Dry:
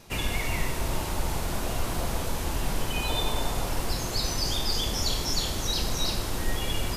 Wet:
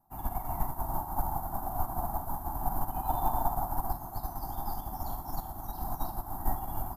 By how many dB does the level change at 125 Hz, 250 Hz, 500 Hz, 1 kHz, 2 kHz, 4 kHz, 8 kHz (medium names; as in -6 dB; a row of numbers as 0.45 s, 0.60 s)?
-7.0 dB, -7.5 dB, -7.5 dB, +2.5 dB, -20.0 dB, -30.0 dB, -16.5 dB